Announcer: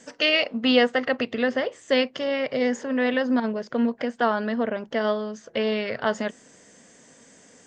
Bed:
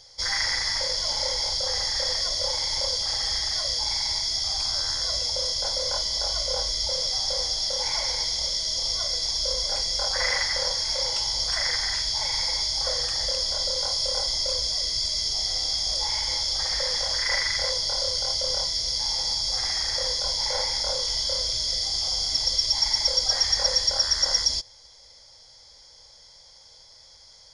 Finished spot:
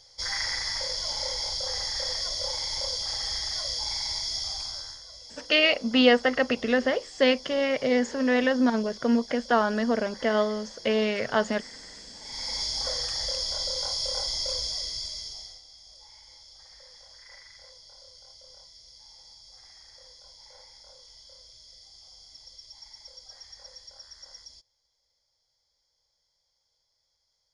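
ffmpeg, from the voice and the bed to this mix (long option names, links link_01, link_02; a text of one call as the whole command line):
ffmpeg -i stem1.wav -i stem2.wav -filter_complex "[0:a]adelay=5300,volume=0dB[link_01];[1:a]volume=11dB,afade=type=out:start_time=4.38:duration=0.65:silence=0.177828,afade=type=in:start_time=12.21:duration=0.41:silence=0.16788,afade=type=out:start_time=14.58:duration=1.04:silence=0.0891251[link_02];[link_01][link_02]amix=inputs=2:normalize=0" out.wav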